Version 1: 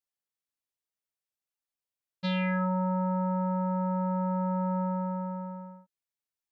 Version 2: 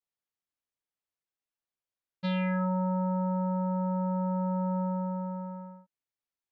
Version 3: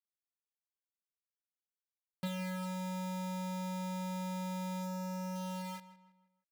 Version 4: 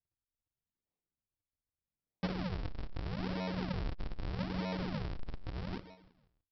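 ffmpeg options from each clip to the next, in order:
-af "lowpass=f=2.8k:p=1,adynamicequalizer=threshold=0.00447:dfrequency=1900:dqfactor=1:tfrequency=1900:tqfactor=1:attack=5:release=100:ratio=0.375:range=3:mode=cutabove:tftype=bell"
-filter_complex "[0:a]acompressor=threshold=-39dB:ratio=12,acrusher=bits=7:mix=0:aa=0.000001,asplit=2[a][b];[b]adelay=161,lowpass=f=3.6k:p=1,volume=-14.5dB,asplit=2[c][d];[d]adelay=161,lowpass=f=3.6k:p=1,volume=0.41,asplit=2[e][f];[f]adelay=161,lowpass=f=3.6k:p=1,volume=0.41,asplit=2[g][h];[h]adelay=161,lowpass=f=3.6k:p=1,volume=0.41[i];[a][c][e][g][i]amix=inputs=5:normalize=0,volume=2dB"
-filter_complex "[0:a]asplit=2[a][b];[b]adelay=24,volume=-10dB[c];[a][c]amix=inputs=2:normalize=0,aresample=11025,acrusher=samples=35:mix=1:aa=0.000001:lfo=1:lforange=56:lforate=0.8,aresample=44100,volume=3.5dB"

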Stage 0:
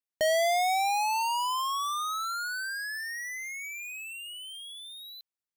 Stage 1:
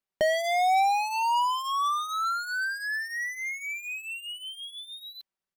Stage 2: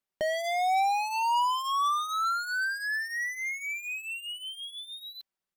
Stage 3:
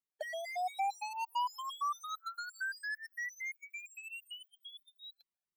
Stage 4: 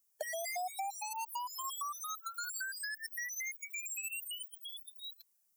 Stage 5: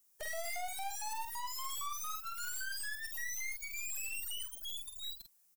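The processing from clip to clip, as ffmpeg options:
-filter_complex "[0:a]highshelf=f=4k:g=-11.5,aecho=1:1:5.2:0.58,asplit=2[a][b];[b]acompressor=threshold=-37dB:ratio=6,volume=0.5dB[c];[a][c]amix=inputs=2:normalize=0"
-af "alimiter=limit=-23dB:level=0:latency=1:release=391"
-af "afftfilt=real='re*gt(sin(2*PI*4.4*pts/sr)*(1-2*mod(floor(b*sr/1024/450),2)),0)':imag='im*gt(sin(2*PI*4.4*pts/sr)*(1-2*mod(floor(b*sr/1024/450),2)),0)':win_size=1024:overlap=0.75,volume=-7dB"
-filter_complex "[0:a]acrossover=split=440[a][b];[b]acompressor=threshold=-44dB:ratio=6[c];[a][c]amix=inputs=2:normalize=0,aexciter=amount=5.7:drive=3.2:freq=5.3k,volume=4.5dB"
-filter_complex "[0:a]acrossover=split=710|2100|5400[a][b][c][d];[b]acrusher=bits=3:mode=log:mix=0:aa=0.000001[e];[a][e][c][d]amix=inputs=4:normalize=0,aeval=exprs='(tanh(316*val(0)+0.75)-tanh(0.75))/316':c=same,asplit=2[f][g];[g]adelay=47,volume=-6dB[h];[f][h]amix=inputs=2:normalize=0,volume=9.5dB"

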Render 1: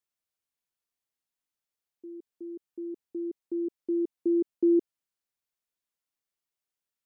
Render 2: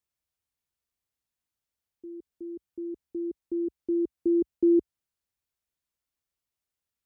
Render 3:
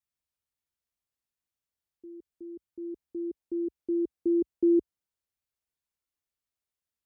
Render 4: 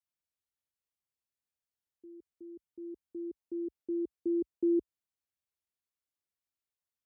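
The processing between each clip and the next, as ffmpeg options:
-af "equalizer=f=61:w=0.62:g=13.5"
-af "adynamicequalizer=threshold=0.0158:dfrequency=450:dqfactor=0.8:tfrequency=450:tqfactor=0.8:attack=5:release=100:ratio=0.375:range=1.5:mode=boostabove:tftype=bell,volume=-4dB"
-af "highpass=46,volume=-5.5dB"

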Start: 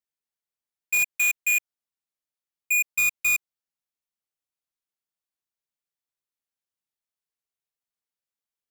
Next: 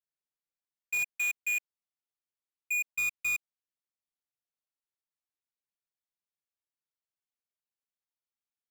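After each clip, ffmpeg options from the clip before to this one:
-af "highshelf=f=7.8k:g=-8,volume=-7dB"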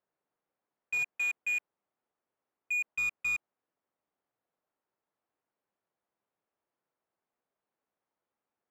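-filter_complex "[0:a]asplit=2[a][b];[b]highpass=f=720:p=1,volume=28dB,asoftclip=type=tanh:threshold=-27dB[c];[a][c]amix=inputs=2:normalize=0,lowpass=f=8k:p=1,volume=-6dB,adynamicsmooth=sensitivity=3:basefreq=790,volume=2.5dB"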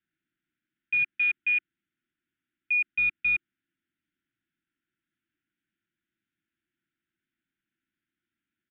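-af "asuperstop=centerf=700:order=20:qfactor=0.69,aresample=8000,aresample=44100,volume=6.5dB"

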